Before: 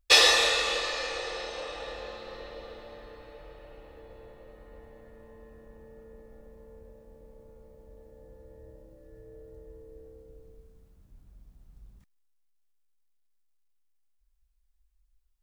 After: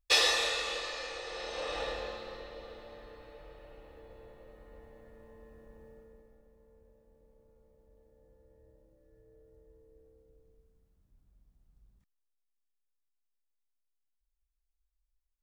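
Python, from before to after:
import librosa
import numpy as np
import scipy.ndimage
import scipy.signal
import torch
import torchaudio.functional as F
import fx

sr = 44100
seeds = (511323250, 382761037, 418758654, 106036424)

y = fx.gain(x, sr, db=fx.line((1.24, -7.0), (1.79, 3.5), (2.47, -3.5), (5.89, -3.5), (6.44, -12.0)))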